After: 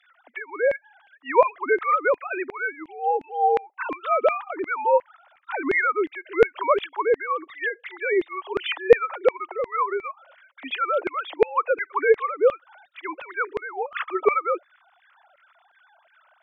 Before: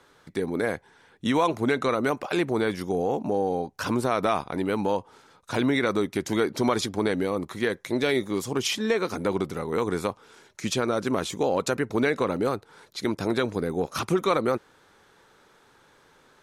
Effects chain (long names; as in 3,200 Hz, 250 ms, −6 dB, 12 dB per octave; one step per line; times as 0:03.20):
three sine waves on the formant tracks
auto-filter high-pass saw down 2.8 Hz 450–2,200 Hz
level +2.5 dB